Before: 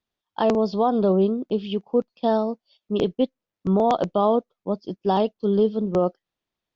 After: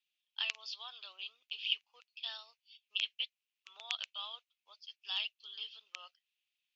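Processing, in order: ladder high-pass 2.4 kHz, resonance 65%; trim +7 dB

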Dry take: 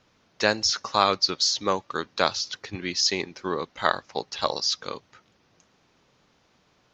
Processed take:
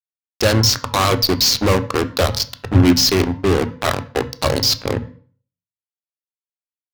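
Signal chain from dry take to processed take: local Wiener filter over 41 samples; dynamic bell 330 Hz, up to +5 dB, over -46 dBFS, Q 3.6; in parallel at -1 dB: compression, threshold -34 dBFS, peak gain reduction 19 dB; on the sum: fuzz box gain 34 dB, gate -36 dBFS; on a send at -10 dB: reverberation RT60 0.45 s, pre-delay 3 ms; on the sum: warped record 45 rpm, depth 100 cents; trim +1 dB

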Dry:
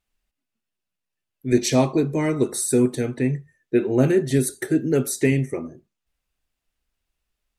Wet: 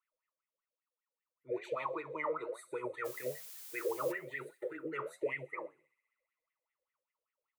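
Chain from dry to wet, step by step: comb 6.3 ms, depth 47%; wah-wah 5.1 Hz 500–2000 Hz, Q 20; peak limiter -39 dBFS, peak gain reduction 14 dB; static phaser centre 1.1 kHz, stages 8; flange 1.1 Hz, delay 5.4 ms, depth 9.1 ms, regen +73%; 3.04–4.11 s: added noise blue -68 dBFS; on a send: feedback echo behind a high-pass 65 ms, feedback 79%, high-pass 3.6 kHz, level -21 dB; on the sum: trim +18 dB

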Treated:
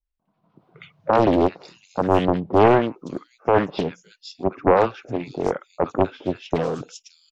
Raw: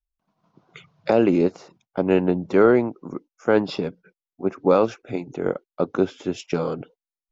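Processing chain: three bands offset in time lows, mids, highs 60/560 ms, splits 1.2/4.3 kHz; loudspeaker Doppler distortion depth 0.78 ms; trim +2 dB

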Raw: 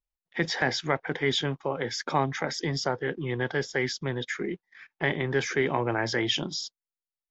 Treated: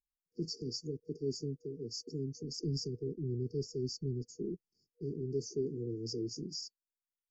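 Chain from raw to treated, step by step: 2.43–4.89 s: bass shelf 130 Hz +9.5 dB; FFT band-reject 480–4500 Hz; trim -8 dB

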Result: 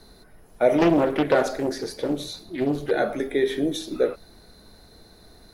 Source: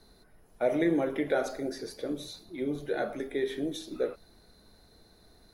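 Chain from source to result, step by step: 0.78–2.91 s: loudspeaker Doppler distortion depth 0.58 ms; trim +8.5 dB

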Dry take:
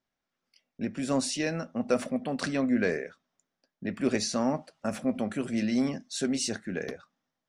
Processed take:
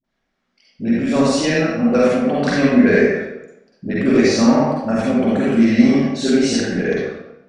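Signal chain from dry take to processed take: 2.95–4.04 s: treble shelf 5.6 kHz +6 dB; vibrato 0.51 Hz 5.9 cents; distance through air 96 m; phase dispersion highs, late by 42 ms, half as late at 470 Hz; reverberation RT60 0.95 s, pre-delay 41 ms, DRR -6 dB; trim +7.5 dB

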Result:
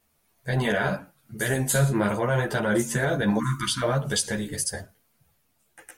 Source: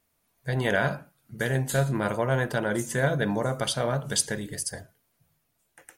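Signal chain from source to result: 1.37–1.92 s: peaking EQ 9.8 kHz +12 dB -> +4.5 dB 1.5 oct; 3.39–3.83 s: spectral selection erased 360–930 Hz; loudness maximiser +15.5 dB; three-phase chorus; trim -8.5 dB

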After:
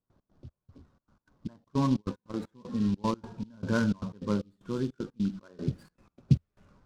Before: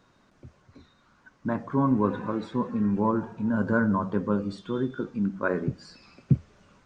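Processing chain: trance gate ".x.xx..xxx" 153 bpm -24 dB; 1.64–2.34 s: gate -26 dBFS, range -25 dB; bass shelf 130 Hz +9 dB; level-controlled noise filter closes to 950 Hz, open at -19 dBFS; delay time shaken by noise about 3.7 kHz, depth 0.031 ms; trim -5 dB

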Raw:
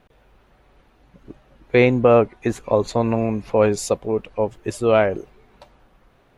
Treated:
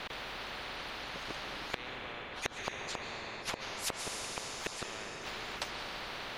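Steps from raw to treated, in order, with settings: three-band isolator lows -20 dB, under 550 Hz, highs -22 dB, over 3.8 kHz; compression 6:1, threshold -22 dBFS, peak gain reduction 8 dB; inverted gate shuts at -28 dBFS, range -38 dB; plate-style reverb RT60 4.2 s, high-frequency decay 0.75×, pre-delay 120 ms, DRR 9.5 dB; spectrum-flattening compressor 4:1; trim +7 dB

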